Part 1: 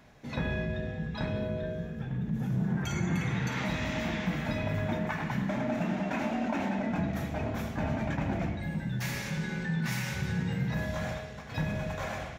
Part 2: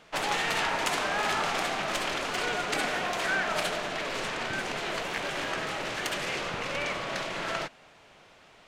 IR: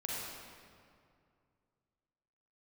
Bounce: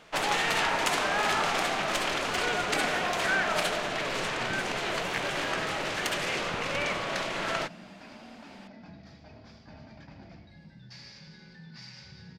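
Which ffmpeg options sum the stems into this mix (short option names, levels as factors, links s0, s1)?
-filter_complex "[0:a]lowpass=f=4800:t=q:w=12,adelay=1900,volume=0.126[s0];[1:a]volume=1.19[s1];[s0][s1]amix=inputs=2:normalize=0"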